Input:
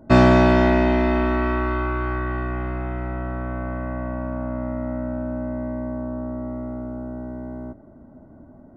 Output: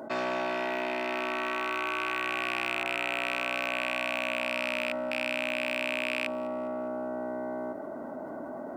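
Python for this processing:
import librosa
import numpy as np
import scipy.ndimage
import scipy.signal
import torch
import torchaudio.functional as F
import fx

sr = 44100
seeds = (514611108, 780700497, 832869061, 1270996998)

p1 = fx.rattle_buzz(x, sr, strikes_db=-28.0, level_db=-15.0)
p2 = fx.rider(p1, sr, range_db=4, speed_s=0.5)
p3 = 10.0 ** (-11.5 / 20.0) * np.tanh(p2 / 10.0 ** (-11.5 / 20.0))
p4 = scipy.signal.sosfilt(scipy.signal.butter(2, 500.0, 'highpass', fs=sr, output='sos'), p3)
p5 = p4 + fx.echo_wet_highpass(p4, sr, ms=203, feedback_pct=44, hz=3100.0, wet_db=-22.0, dry=0)
p6 = fx.env_flatten(p5, sr, amount_pct=70)
y = p6 * librosa.db_to_amplitude(-7.5)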